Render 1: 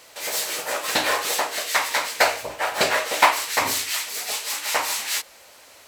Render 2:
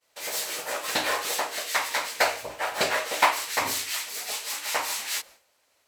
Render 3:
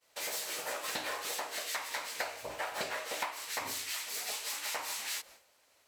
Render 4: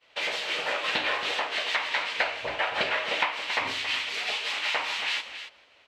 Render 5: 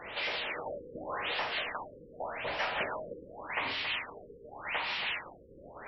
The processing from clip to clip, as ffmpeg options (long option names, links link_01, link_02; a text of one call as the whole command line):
ffmpeg -i in.wav -af "agate=range=-33dB:threshold=-38dB:ratio=3:detection=peak,volume=-4.5dB" out.wav
ffmpeg -i in.wav -af "acompressor=threshold=-35dB:ratio=6" out.wav
ffmpeg -i in.wav -filter_complex "[0:a]lowpass=frequency=3000:width_type=q:width=2.3,asplit=2[link_01][link_02];[link_02]aecho=0:1:275:0.282[link_03];[link_01][link_03]amix=inputs=2:normalize=0,volume=7.5dB" out.wav
ffmpeg -i in.wav -af "aeval=exprs='val(0)+0.5*0.0531*sgn(val(0))':channel_layout=same,adynamicsmooth=sensitivity=5:basefreq=1100,afftfilt=real='re*lt(b*sr/1024,520*pow(5800/520,0.5+0.5*sin(2*PI*0.86*pts/sr)))':imag='im*lt(b*sr/1024,520*pow(5800/520,0.5+0.5*sin(2*PI*0.86*pts/sr)))':win_size=1024:overlap=0.75,volume=-8.5dB" out.wav